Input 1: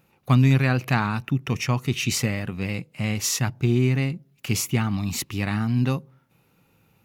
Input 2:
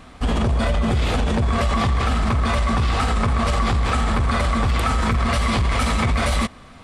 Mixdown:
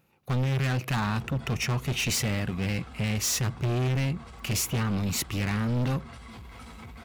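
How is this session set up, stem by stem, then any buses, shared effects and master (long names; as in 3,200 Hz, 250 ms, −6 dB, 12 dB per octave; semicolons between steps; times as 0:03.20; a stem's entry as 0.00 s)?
−4.5 dB, 0.00 s, no send, automatic gain control gain up to 5.5 dB
−15.5 dB, 0.80 s, no send, notch comb filter 600 Hz; automatic ducking −8 dB, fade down 1.70 s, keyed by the first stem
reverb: not used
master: hard clipping −24 dBFS, distortion −7 dB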